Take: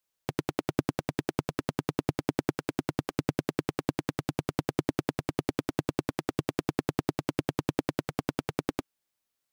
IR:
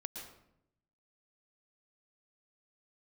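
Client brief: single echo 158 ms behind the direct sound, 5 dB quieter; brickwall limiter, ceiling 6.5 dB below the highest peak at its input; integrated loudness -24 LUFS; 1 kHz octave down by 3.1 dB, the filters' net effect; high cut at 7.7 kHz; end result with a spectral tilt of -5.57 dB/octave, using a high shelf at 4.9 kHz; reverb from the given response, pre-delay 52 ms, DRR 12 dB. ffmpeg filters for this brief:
-filter_complex "[0:a]lowpass=7700,equalizer=f=1000:t=o:g=-4.5,highshelf=f=4900:g=5.5,alimiter=limit=0.15:level=0:latency=1,aecho=1:1:158:0.562,asplit=2[s0][s1];[1:a]atrim=start_sample=2205,adelay=52[s2];[s1][s2]afir=irnorm=-1:irlink=0,volume=0.316[s3];[s0][s3]amix=inputs=2:normalize=0,volume=5.01"

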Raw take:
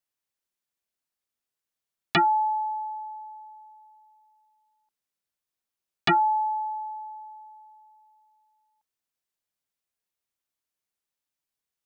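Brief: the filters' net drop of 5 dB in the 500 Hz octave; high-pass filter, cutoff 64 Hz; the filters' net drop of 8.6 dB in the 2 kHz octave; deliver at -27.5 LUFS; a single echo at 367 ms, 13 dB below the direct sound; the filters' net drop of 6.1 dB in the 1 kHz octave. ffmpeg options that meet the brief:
-af "highpass=64,equalizer=f=500:t=o:g=-8,equalizer=f=1000:t=o:g=-3,equalizer=f=2000:t=o:g=-9,aecho=1:1:367:0.224,volume=1.68"

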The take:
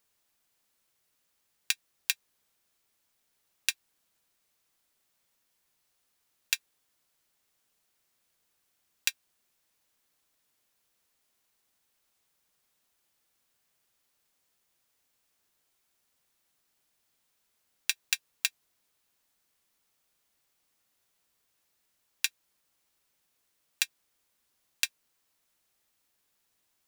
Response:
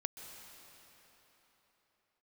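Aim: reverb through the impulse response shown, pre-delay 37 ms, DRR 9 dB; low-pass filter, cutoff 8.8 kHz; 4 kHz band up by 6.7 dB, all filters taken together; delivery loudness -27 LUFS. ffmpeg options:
-filter_complex "[0:a]lowpass=8800,equalizer=f=4000:t=o:g=8,asplit=2[s0][s1];[1:a]atrim=start_sample=2205,adelay=37[s2];[s1][s2]afir=irnorm=-1:irlink=0,volume=0.398[s3];[s0][s3]amix=inputs=2:normalize=0,volume=1.26"

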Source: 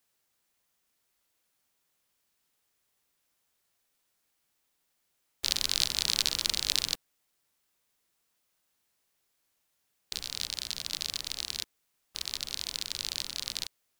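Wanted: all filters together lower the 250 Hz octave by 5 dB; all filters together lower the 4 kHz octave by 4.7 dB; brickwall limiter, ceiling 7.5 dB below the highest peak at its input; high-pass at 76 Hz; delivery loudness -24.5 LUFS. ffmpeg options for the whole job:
-af "highpass=76,equalizer=f=250:t=o:g=-7,equalizer=f=4000:t=o:g=-5.5,volume=4.22,alimiter=limit=0.944:level=0:latency=1"

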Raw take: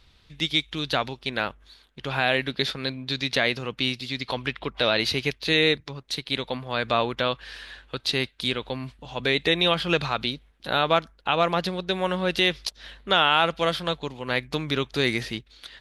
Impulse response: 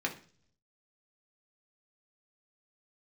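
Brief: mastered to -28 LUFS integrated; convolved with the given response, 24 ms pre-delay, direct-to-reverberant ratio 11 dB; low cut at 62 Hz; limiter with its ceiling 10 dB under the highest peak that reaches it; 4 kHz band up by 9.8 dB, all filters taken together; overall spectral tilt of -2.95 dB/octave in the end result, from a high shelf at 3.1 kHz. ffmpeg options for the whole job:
-filter_complex "[0:a]highpass=62,highshelf=f=3100:g=8,equalizer=f=4000:t=o:g=6,alimiter=limit=0.316:level=0:latency=1,asplit=2[s0][s1];[1:a]atrim=start_sample=2205,adelay=24[s2];[s1][s2]afir=irnorm=-1:irlink=0,volume=0.15[s3];[s0][s3]amix=inputs=2:normalize=0,volume=0.562"

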